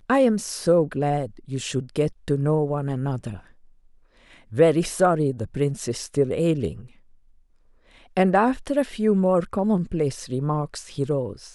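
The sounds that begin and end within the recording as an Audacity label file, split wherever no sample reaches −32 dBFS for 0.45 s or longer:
4.520000	6.810000	sound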